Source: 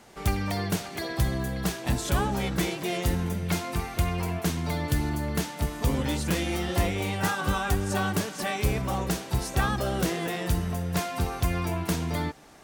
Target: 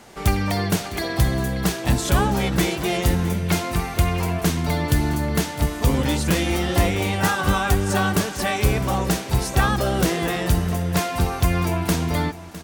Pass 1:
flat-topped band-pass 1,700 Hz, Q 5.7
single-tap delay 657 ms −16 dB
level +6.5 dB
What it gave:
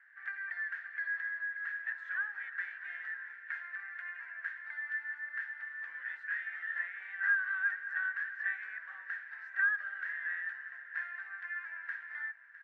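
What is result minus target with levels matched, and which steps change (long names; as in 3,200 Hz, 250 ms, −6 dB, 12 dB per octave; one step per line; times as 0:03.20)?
2,000 Hz band +11.0 dB
remove: flat-topped band-pass 1,700 Hz, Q 5.7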